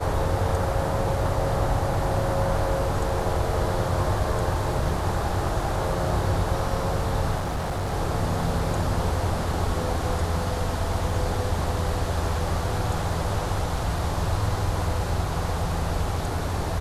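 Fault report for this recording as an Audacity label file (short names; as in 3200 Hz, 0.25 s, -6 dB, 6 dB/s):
7.370000	7.940000	clipped -24 dBFS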